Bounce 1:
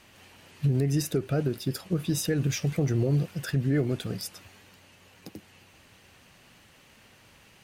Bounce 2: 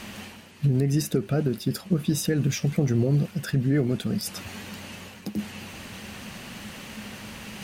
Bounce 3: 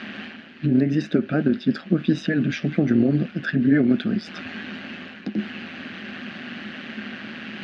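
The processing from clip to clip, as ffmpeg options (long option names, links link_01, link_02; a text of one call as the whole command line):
ffmpeg -i in.wav -af "areverse,acompressor=mode=upward:threshold=-29dB:ratio=2.5,areverse,equalizer=frequency=210:width_type=o:width=0.26:gain=13.5,volume=1.5dB" out.wav
ffmpeg -i in.wav -af "tremolo=f=160:d=0.621,highpass=200,equalizer=frequency=250:width_type=q:width=4:gain=9,equalizer=frequency=470:width_type=q:width=4:gain=-6,equalizer=frequency=950:width_type=q:width=4:gain=-10,equalizer=frequency=1600:width_type=q:width=4:gain=8,lowpass=frequency=3700:width=0.5412,lowpass=frequency=3700:width=1.3066,volume=7dB" out.wav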